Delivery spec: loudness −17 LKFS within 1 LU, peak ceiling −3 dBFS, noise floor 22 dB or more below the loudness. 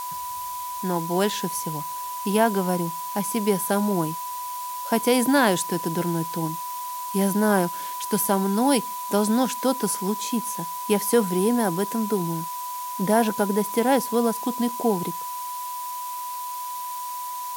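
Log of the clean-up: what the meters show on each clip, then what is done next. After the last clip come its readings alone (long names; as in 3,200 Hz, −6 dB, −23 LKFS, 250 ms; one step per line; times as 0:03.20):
interfering tone 990 Hz; level of the tone −30 dBFS; background noise floor −32 dBFS; target noise floor −47 dBFS; integrated loudness −24.5 LKFS; sample peak −5.5 dBFS; target loudness −17.0 LKFS
→ notch filter 990 Hz, Q 30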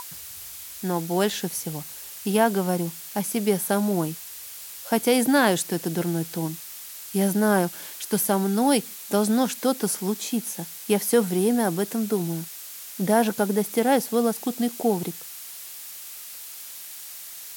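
interfering tone none found; background noise floor −40 dBFS; target noise floor −46 dBFS
→ noise reduction from a noise print 6 dB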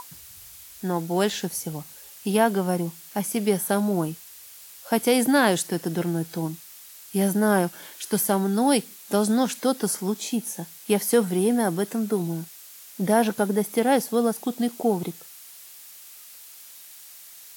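background noise floor −46 dBFS; target noise floor −47 dBFS
→ noise reduction from a noise print 6 dB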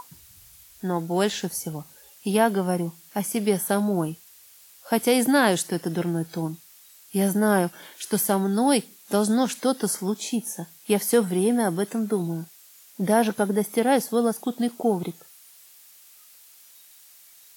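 background noise floor −52 dBFS; integrated loudness −24.5 LKFS; sample peak −6.5 dBFS; target loudness −17.0 LKFS
→ level +7.5 dB
brickwall limiter −3 dBFS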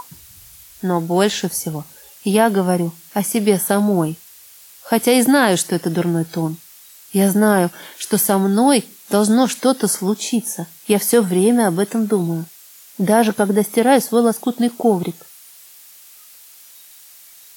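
integrated loudness −17.5 LKFS; sample peak −3.0 dBFS; background noise floor −44 dBFS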